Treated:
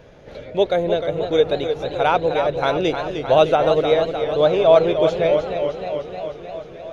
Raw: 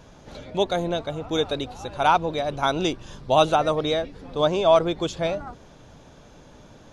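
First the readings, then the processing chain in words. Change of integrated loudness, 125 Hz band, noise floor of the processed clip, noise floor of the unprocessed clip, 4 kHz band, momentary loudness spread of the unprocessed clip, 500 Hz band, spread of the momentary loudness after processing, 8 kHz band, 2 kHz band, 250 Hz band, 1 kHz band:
+4.5 dB, +2.0 dB, −39 dBFS, −49 dBFS, 0.0 dB, 14 LU, +7.0 dB, 15 LU, can't be measured, +3.5 dB, +2.5 dB, +1.5 dB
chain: octave-band graphic EQ 125/250/500/1,000/2,000/8,000 Hz +3/−3/+11/−5/+7/−10 dB
feedback echo with a swinging delay time 307 ms, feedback 70%, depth 92 cents, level −8 dB
level −1 dB

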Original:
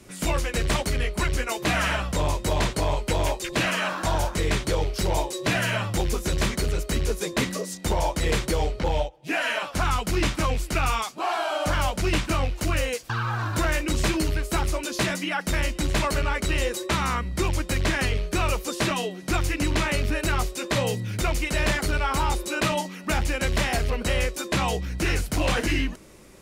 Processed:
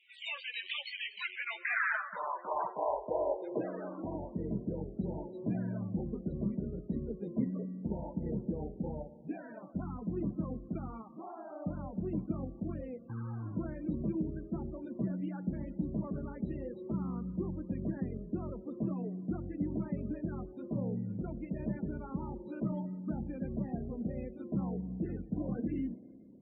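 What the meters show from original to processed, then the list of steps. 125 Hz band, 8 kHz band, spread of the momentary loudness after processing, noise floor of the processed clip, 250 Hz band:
−11.5 dB, below −40 dB, 6 LU, −52 dBFS, −5.5 dB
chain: band-pass filter sweep 2,900 Hz → 210 Hz, 0:01.15–0:04.48
four-comb reverb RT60 2.4 s, combs from 27 ms, DRR 13.5 dB
spectral peaks only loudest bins 32
level −1.5 dB

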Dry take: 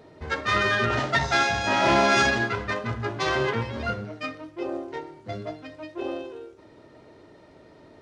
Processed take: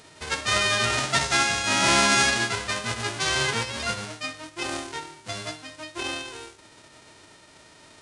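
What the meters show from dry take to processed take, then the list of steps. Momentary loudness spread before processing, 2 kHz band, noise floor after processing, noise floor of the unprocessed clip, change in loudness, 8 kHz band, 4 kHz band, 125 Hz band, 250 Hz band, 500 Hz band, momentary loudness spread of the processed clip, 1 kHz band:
18 LU, +0.5 dB, −53 dBFS, −52 dBFS, +1.0 dB, +12.0 dB, +6.5 dB, −3.0 dB, −3.0 dB, −4.5 dB, 17 LU, −1.5 dB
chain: spectral envelope flattened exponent 0.3
downsampling to 22,050 Hz

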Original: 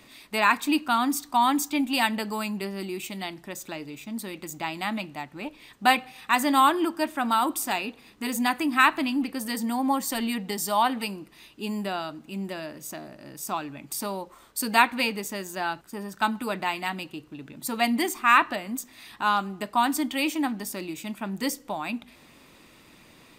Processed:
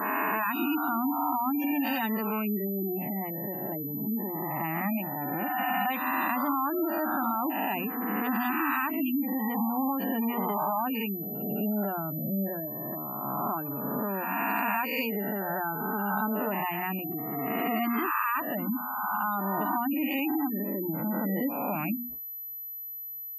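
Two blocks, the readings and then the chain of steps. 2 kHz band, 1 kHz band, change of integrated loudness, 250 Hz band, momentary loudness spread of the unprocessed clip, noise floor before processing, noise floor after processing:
−5.5 dB, −4.0 dB, −3.0 dB, −0.5 dB, 16 LU, −54 dBFS, −40 dBFS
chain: peak hold with a rise ahead of every peak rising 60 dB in 2.07 s
low-pass that shuts in the quiet parts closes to 1,000 Hz, open at −14.5 dBFS
mains-hum notches 60/120/180/240/300 Hz
gate on every frequency bin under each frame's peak −15 dB strong
low-shelf EQ 300 Hz +11 dB
downward compressor 5 to 1, threshold −21 dBFS, peak gain reduction 10 dB
high-frequency loss of the air 77 metres
noise gate −42 dBFS, range −39 dB
switching amplifier with a slow clock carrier 12,000 Hz
level −4.5 dB

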